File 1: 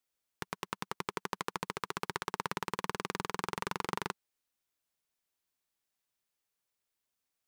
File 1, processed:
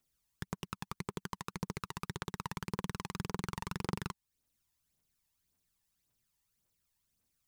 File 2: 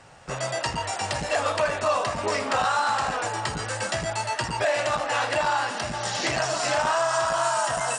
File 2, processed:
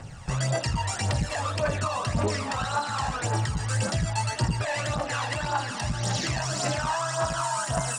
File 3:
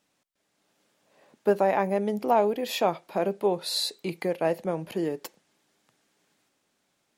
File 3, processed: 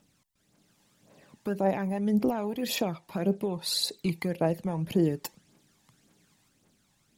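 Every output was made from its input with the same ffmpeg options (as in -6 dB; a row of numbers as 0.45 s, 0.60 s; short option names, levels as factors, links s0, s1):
-af "bass=f=250:g=11,treble=f=4000:g=4,alimiter=limit=0.1:level=0:latency=1:release=431,aphaser=in_gain=1:out_gain=1:delay=1.2:decay=0.54:speed=1.8:type=triangular"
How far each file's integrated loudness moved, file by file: -3.0 LU, -2.5 LU, -2.5 LU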